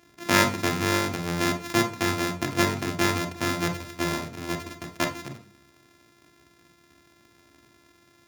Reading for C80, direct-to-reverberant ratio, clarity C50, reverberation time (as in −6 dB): 16.5 dB, 5.0 dB, 11.5 dB, 0.45 s